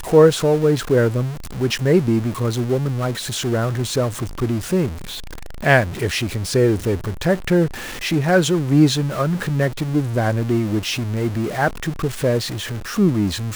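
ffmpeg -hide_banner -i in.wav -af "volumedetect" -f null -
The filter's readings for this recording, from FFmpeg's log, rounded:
mean_volume: -19.0 dB
max_volume: -1.6 dB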